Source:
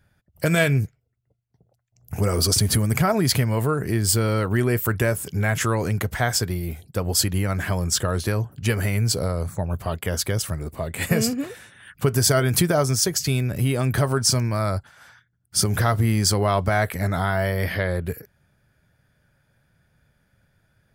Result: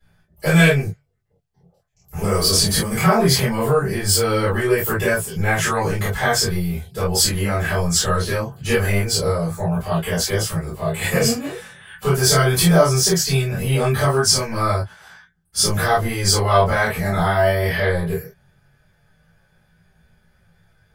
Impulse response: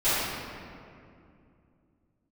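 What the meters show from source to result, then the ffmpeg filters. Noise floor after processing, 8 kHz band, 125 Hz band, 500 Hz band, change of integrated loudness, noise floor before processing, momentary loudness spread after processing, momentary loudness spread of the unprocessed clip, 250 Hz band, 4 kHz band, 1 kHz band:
−62 dBFS, +3.5 dB, +1.5 dB, +5.5 dB, +4.0 dB, −69 dBFS, 10 LU, 9 LU, +3.0 dB, +5.5 dB, +6.0 dB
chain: -filter_complex "[0:a]flanger=delay=18:depth=6:speed=0.2,acrossover=split=260[link_01][link_02];[link_01]asoftclip=type=tanh:threshold=-26.5dB[link_03];[link_03][link_02]amix=inputs=2:normalize=0[link_04];[1:a]atrim=start_sample=2205,atrim=end_sample=3528,asetrate=57330,aresample=44100[link_05];[link_04][link_05]afir=irnorm=-1:irlink=0,volume=-1dB"

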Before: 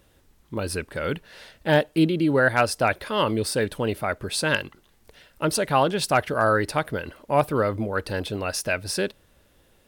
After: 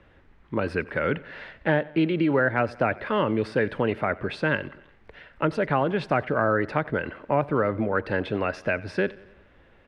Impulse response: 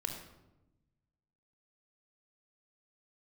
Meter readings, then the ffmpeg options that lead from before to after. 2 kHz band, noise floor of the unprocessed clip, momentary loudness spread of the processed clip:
−1.0 dB, −61 dBFS, 7 LU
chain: -filter_complex "[0:a]acrossover=split=110|510[link_01][link_02][link_03];[link_01]acompressor=threshold=-51dB:ratio=4[link_04];[link_02]acompressor=threshold=-26dB:ratio=4[link_05];[link_03]acompressor=threshold=-31dB:ratio=4[link_06];[link_04][link_05][link_06]amix=inputs=3:normalize=0,lowpass=frequency=2000:width_type=q:width=1.6,aecho=1:1:91|182|273|364:0.0841|0.0471|0.0264|0.0148,volume=3.5dB"

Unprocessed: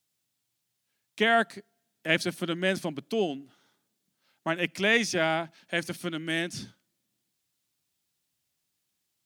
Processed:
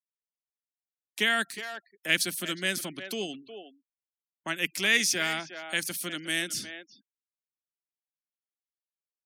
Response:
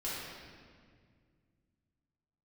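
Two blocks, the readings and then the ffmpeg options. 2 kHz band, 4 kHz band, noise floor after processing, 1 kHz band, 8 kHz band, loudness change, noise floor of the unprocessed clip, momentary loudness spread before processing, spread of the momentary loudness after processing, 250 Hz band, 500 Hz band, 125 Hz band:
+0.5 dB, +3.5 dB, below −85 dBFS, −6.0 dB, +8.5 dB, −0.5 dB, −80 dBFS, 12 LU, 18 LU, −6.0 dB, −8.0 dB, −7.0 dB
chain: -filter_complex "[0:a]asplit=2[link_01][link_02];[link_02]adelay=360,highpass=300,lowpass=3400,asoftclip=type=hard:threshold=-18dB,volume=-12dB[link_03];[link_01][link_03]amix=inputs=2:normalize=0,acrossover=split=370|1200[link_04][link_05][link_06];[link_05]acompressor=threshold=-43dB:ratio=6[link_07];[link_04][link_07][link_06]amix=inputs=3:normalize=0,aemphasis=mode=production:type=bsi,afftfilt=real='re*gte(hypot(re,im),0.00282)':imag='im*gte(hypot(re,im),0.00282)':win_size=1024:overlap=0.75,aresample=32000,aresample=44100"

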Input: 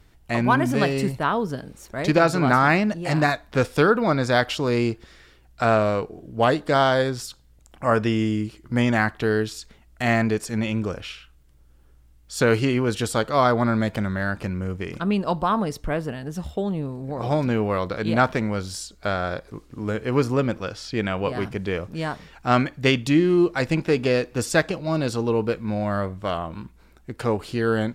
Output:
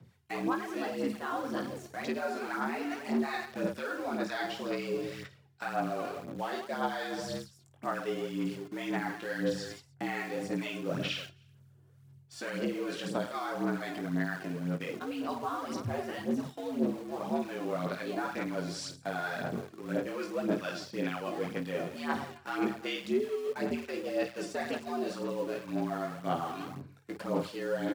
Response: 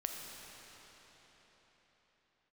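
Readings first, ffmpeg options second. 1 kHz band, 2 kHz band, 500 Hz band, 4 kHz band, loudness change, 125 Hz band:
−12.0 dB, −12.0 dB, −11.5 dB, −10.0 dB, −12.0 dB, −16.5 dB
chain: -filter_complex "[0:a]aecho=1:1:20|52|103.2|185.1|316.2:0.631|0.398|0.251|0.158|0.1,agate=range=-6dB:threshold=-44dB:ratio=16:detection=peak,alimiter=limit=-12.5dB:level=0:latency=1:release=325,areverse,acompressor=threshold=-32dB:ratio=6,areverse,acrossover=split=940[link_01][link_02];[link_01]aeval=exprs='val(0)*(1-0.5/2+0.5/2*cos(2*PI*2.2*n/s))':channel_layout=same[link_03];[link_02]aeval=exprs='val(0)*(1-0.5/2-0.5/2*cos(2*PI*2.2*n/s))':channel_layout=same[link_04];[link_03][link_04]amix=inputs=2:normalize=0,asplit=2[link_05][link_06];[link_06]acrusher=bits=6:mix=0:aa=0.000001,volume=-7.5dB[link_07];[link_05][link_07]amix=inputs=2:normalize=0,afreqshift=77,aphaser=in_gain=1:out_gain=1:delay=2.9:decay=0.5:speed=1.9:type=sinusoidal,acrossover=split=5700[link_08][link_09];[link_09]acompressor=threshold=-52dB:ratio=4:attack=1:release=60[link_10];[link_08][link_10]amix=inputs=2:normalize=0,volume=-2.5dB"

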